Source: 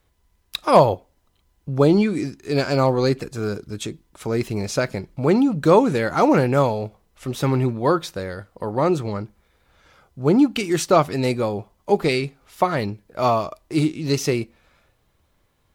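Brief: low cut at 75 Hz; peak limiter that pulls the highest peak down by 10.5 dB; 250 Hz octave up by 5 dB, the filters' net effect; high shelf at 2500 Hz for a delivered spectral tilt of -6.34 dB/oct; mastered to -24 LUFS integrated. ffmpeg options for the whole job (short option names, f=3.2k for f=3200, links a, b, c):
-af "highpass=75,equalizer=f=250:t=o:g=6.5,highshelf=f=2.5k:g=-6,volume=-1.5dB,alimiter=limit=-12.5dB:level=0:latency=1"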